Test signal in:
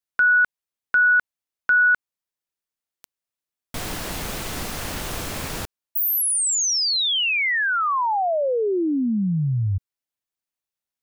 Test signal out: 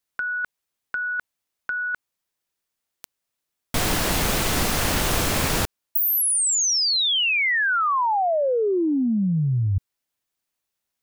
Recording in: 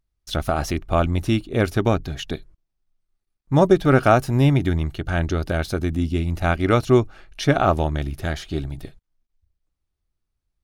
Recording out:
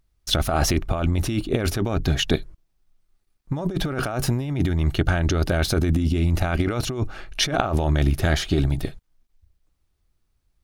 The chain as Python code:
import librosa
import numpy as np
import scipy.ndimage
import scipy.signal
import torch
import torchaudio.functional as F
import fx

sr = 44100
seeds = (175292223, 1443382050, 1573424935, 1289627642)

y = fx.over_compress(x, sr, threshold_db=-25.0, ratio=-1.0)
y = y * librosa.db_to_amplitude(3.5)